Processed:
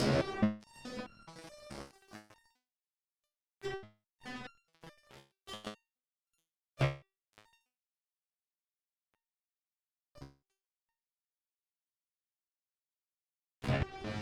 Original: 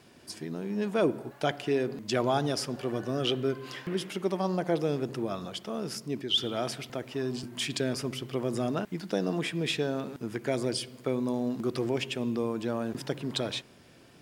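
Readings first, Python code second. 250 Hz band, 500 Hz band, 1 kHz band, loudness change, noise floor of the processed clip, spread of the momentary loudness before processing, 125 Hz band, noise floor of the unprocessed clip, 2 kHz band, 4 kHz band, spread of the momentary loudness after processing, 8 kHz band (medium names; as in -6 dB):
-11.5 dB, -14.0 dB, -11.0 dB, -7.5 dB, under -85 dBFS, 7 LU, -6.0 dB, -55 dBFS, -8.5 dB, -16.5 dB, 22 LU, -15.5 dB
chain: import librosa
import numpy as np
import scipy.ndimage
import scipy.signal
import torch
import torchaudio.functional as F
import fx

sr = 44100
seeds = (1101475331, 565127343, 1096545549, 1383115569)

p1 = fx.spec_swells(x, sr, rise_s=2.22)
p2 = fx.low_shelf(p1, sr, hz=120.0, db=10.0)
p3 = fx.hum_notches(p2, sr, base_hz=60, count=7)
p4 = fx.sample_hold(p3, sr, seeds[0], rate_hz=13000.0, jitter_pct=0)
p5 = p3 + (p4 * librosa.db_to_amplitude(-4.5))
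p6 = fx.dynamic_eq(p5, sr, hz=6100.0, q=0.87, threshold_db=-42.0, ratio=4.0, max_db=-5)
p7 = fx.gate_flip(p6, sr, shuts_db=-18.0, range_db=-41)
p8 = fx.chorus_voices(p7, sr, voices=6, hz=0.86, base_ms=23, depth_ms=1.0, mix_pct=50)
p9 = p8 + fx.echo_diffused(p8, sr, ms=663, feedback_pct=54, wet_db=-14.5, dry=0)
p10 = fx.fuzz(p9, sr, gain_db=50.0, gate_db=-51.0)
p11 = fx.level_steps(p10, sr, step_db=9)
p12 = fx.env_lowpass_down(p11, sr, base_hz=2900.0, full_db=-19.0)
p13 = fx.resonator_held(p12, sr, hz=4.7, low_hz=69.0, high_hz=1400.0)
y = p13 * librosa.db_to_amplitude(-2.0)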